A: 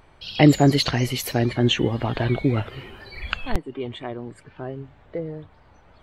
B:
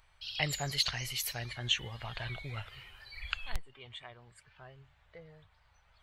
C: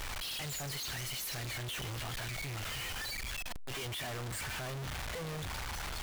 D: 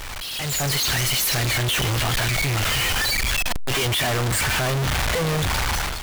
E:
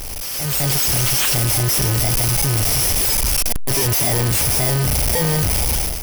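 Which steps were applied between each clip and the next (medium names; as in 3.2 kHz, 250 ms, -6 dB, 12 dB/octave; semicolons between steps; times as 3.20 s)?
amplifier tone stack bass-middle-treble 10-0-10; trim -4.5 dB
one-bit comparator
level rider gain up to 11 dB; trim +6.5 dB
bit-reversed sample order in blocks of 32 samples; trim +4.5 dB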